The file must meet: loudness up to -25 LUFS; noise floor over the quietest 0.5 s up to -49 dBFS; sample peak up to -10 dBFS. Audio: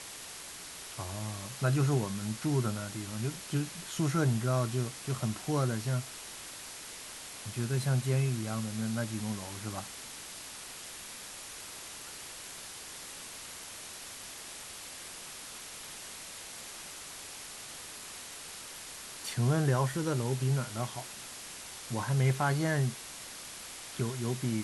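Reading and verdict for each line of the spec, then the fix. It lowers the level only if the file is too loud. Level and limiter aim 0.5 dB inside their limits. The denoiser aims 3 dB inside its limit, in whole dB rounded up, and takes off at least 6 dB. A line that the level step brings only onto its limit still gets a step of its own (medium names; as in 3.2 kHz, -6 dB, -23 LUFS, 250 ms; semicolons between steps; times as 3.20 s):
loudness -35.0 LUFS: pass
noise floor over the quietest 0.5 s -45 dBFS: fail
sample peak -16.5 dBFS: pass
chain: noise reduction 7 dB, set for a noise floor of -45 dBFS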